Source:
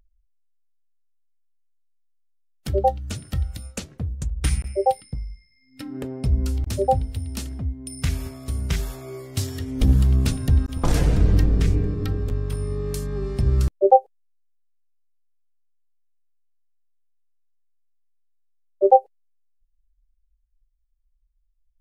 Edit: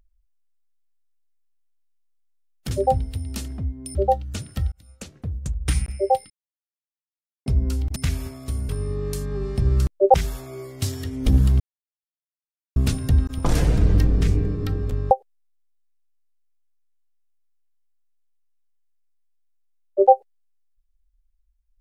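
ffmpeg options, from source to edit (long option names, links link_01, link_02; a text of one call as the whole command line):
ffmpeg -i in.wav -filter_complex "[0:a]asplit=11[link_01][link_02][link_03][link_04][link_05][link_06][link_07][link_08][link_09][link_10][link_11];[link_01]atrim=end=2.712[link_12];[link_02]atrim=start=6.718:end=7.962[link_13];[link_03]atrim=start=2.708:end=3.48,asetpts=PTS-STARTPTS,afade=type=out:start_time=0.768:duration=0.004:curve=hsin[link_14];[link_04]atrim=start=3.48:end=5.06,asetpts=PTS-STARTPTS,afade=type=in:duration=0.65,afade=type=out:start_time=1.576:duration=0.004:curve=hsin[link_15];[link_05]atrim=start=5.06:end=6.22,asetpts=PTS-STARTPTS,volume=0[link_16];[link_06]atrim=start=6.22:end=6.722,asetpts=PTS-STARTPTS,afade=type=in:duration=0.004:curve=hsin[link_17];[link_07]atrim=start=7.958:end=8.692[link_18];[link_08]atrim=start=12.498:end=13.952[link_19];[link_09]atrim=start=8.688:end=10.15,asetpts=PTS-STARTPTS,afade=type=out:start_time=1.458:duration=0.004:curve=hsin,apad=pad_dur=1.16[link_20];[link_10]atrim=start=10.15:end=12.502,asetpts=PTS-STARTPTS,afade=type=in:duration=0.004:curve=hsin[link_21];[link_11]atrim=start=13.948[link_22];[link_12][link_13]acrossfade=duration=0.004:curve1=hsin:curve2=hsin[link_23];[link_14][link_15][link_16][link_17]concat=n=4:v=0:a=1[link_24];[link_23][link_24]acrossfade=duration=0.004:curve1=hsin:curve2=hsin[link_25];[link_25][link_18]acrossfade=duration=0.004:curve1=hsin:curve2=hsin[link_26];[link_26][link_19]acrossfade=duration=0.004:curve1=hsin:curve2=hsin[link_27];[link_20][link_21]concat=n=2:v=0:a=1[link_28];[link_27][link_28]acrossfade=duration=0.004:curve1=hsin:curve2=hsin[link_29];[link_29][link_22]acrossfade=duration=0.004:curve1=hsin:curve2=hsin" out.wav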